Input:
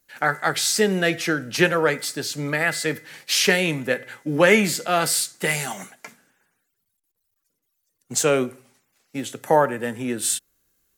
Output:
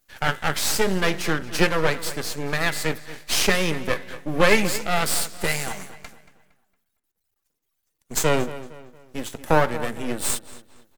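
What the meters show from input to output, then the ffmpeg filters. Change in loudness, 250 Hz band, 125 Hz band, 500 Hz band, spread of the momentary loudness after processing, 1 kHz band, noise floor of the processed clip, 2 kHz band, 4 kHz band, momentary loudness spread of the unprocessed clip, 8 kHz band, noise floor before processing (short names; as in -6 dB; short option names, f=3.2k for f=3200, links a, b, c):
-2.0 dB, -2.5 dB, +0.5 dB, -2.5 dB, 13 LU, -1.0 dB, -77 dBFS, -2.0 dB, -1.5 dB, 13 LU, -2.5 dB, -76 dBFS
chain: -filter_complex "[0:a]aeval=exprs='max(val(0),0)':c=same,asplit=2[a][b];[b]adelay=230,lowpass=f=4k:p=1,volume=-15dB,asplit=2[c][d];[d]adelay=230,lowpass=f=4k:p=1,volume=0.4,asplit=2[e][f];[f]adelay=230,lowpass=f=4k:p=1,volume=0.4,asplit=2[g][h];[h]adelay=230,lowpass=f=4k:p=1,volume=0.4[i];[a][c][e][g][i]amix=inputs=5:normalize=0,volume=2.5dB"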